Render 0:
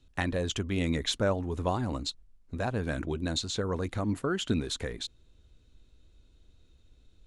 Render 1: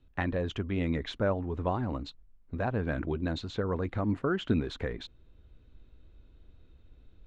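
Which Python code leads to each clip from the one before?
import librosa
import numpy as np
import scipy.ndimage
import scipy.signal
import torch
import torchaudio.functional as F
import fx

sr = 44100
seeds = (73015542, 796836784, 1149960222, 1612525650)

y = scipy.signal.sosfilt(scipy.signal.butter(2, 2300.0, 'lowpass', fs=sr, output='sos'), x)
y = fx.rider(y, sr, range_db=4, speed_s=2.0)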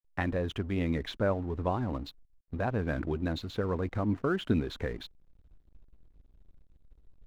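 y = fx.backlash(x, sr, play_db=-48.0)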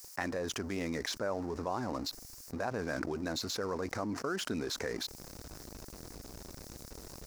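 y = fx.highpass(x, sr, hz=580.0, slope=6)
y = fx.high_shelf_res(y, sr, hz=4200.0, db=8.0, q=3.0)
y = fx.env_flatten(y, sr, amount_pct=70)
y = y * librosa.db_to_amplitude(-3.5)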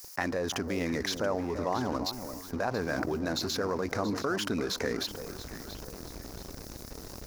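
y = fx.peak_eq(x, sr, hz=8100.0, db=-6.0, octaves=0.39)
y = fx.echo_alternate(y, sr, ms=340, hz=1200.0, feedback_pct=59, wet_db=-9)
y = y * librosa.db_to_amplitude(4.5)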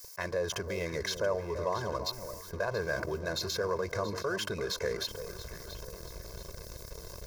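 y = fx.notch(x, sr, hz=2800.0, q=28.0)
y = y + 0.98 * np.pad(y, (int(1.9 * sr / 1000.0), 0))[:len(y)]
y = fx.attack_slew(y, sr, db_per_s=470.0)
y = y * librosa.db_to_amplitude(-4.5)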